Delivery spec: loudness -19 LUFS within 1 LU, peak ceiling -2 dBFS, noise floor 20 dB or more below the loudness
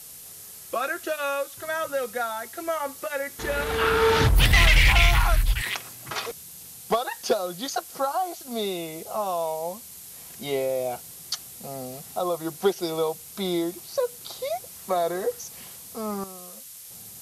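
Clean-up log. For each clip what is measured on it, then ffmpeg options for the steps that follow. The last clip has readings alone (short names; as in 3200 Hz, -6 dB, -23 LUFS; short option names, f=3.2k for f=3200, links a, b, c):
noise floor -43 dBFS; noise floor target -46 dBFS; loudness -26.0 LUFS; peak -10.5 dBFS; loudness target -19.0 LUFS
-> -af "afftdn=nr=6:nf=-43"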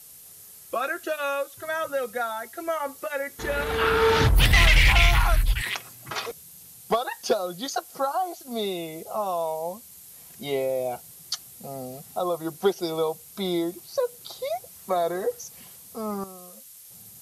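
noise floor -47 dBFS; loudness -26.0 LUFS; peak -10.5 dBFS; loudness target -19.0 LUFS
-> -af "volume=7dB"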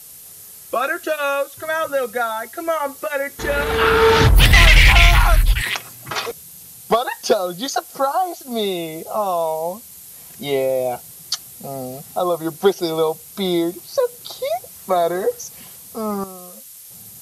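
loudness -19.0 LUFS; peak -3.5 dBFS; noise floor -40 dBFS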